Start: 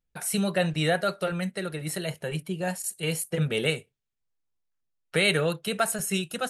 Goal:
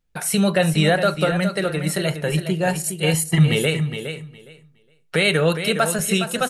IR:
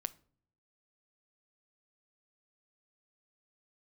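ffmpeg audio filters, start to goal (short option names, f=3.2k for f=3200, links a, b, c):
-filter_complex "[0:a]asettb=1/sr,asplit=3[a][b][c];[a]atrim=end=3.144[d];[b]atrim=start=3.14:end=3.55,asetpts=PTS-STARTPTS,afade=t=in:d=0.004:c=qsin,afade=t=out:st=0.406:d=0.004:c=qsin,aecho=1:1:1:0.93,atrim=end_sample=18081[e];[c]atrim=start=3.546[f];[d][e]acrossfade=d=0.004:c1=hsin:c2=qsin[g];[g][f]acrossfade=d=0.004:c1=qsin:c2=hsin,alimiter=limit=-16.5dB:level=0:latency=1:release=145,aecho=1:1:413|826|1239:0.355|0.0603|0.0103,asplit=2[h][i];[1:a]atrim=start_sample=2205,highshelf=f=9.3k:g=-9[j];[i][j]afir=irnorm=-1:irlink=0,volume=6.5dB[k];[h][k]amix=inputs=2:normalize=0"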